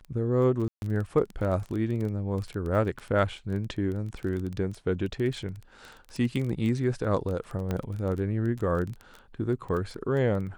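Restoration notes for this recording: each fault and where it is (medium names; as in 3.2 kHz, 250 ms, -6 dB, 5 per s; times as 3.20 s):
crackle 19 per s -32 dBFS
0.68–0.82 s: dropout 141 ms
7.71 s: pop -17 dBFS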